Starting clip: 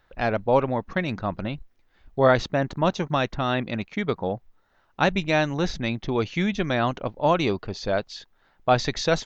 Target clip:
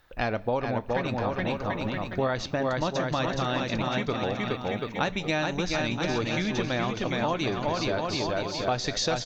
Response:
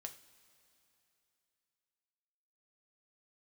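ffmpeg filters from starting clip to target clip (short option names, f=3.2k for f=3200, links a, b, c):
-filter_complex "[0:a]aemphasis=mode=production:type=cd,asplit=2[a][b];[b]aecho=0:1:420|735|971.2|1148|1281:0.631|0.398|0.251|0.158|0.1[c];[a][c]amix=inputs=2:normalize=0,acompressor=threshold=-26dB:ratio=5,asplit=2[d][e];[1:a]atrim=start_sample=2205,asetrate=79380,aresample=44100[f];[e][f]afir=irnorm=-1:irlink=0,volume=7.5dB[g];[d][g]amix=inputs=2:normalize=0,volume=-3dB"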